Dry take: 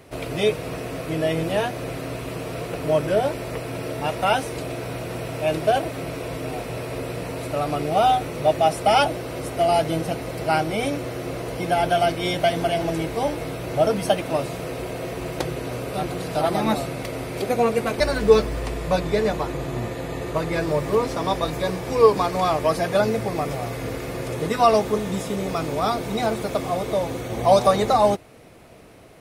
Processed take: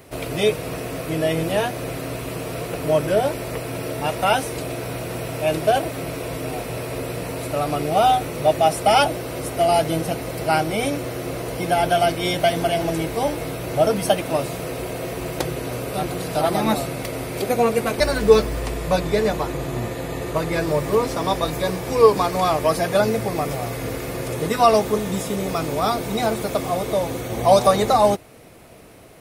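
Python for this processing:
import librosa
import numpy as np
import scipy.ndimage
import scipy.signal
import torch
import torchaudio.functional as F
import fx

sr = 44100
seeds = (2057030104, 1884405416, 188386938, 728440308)

y = fx.high_shelf(x, sr, hz=9500.0, db=9.0)
y = y * 10.0 ** (1.5 / 20.0)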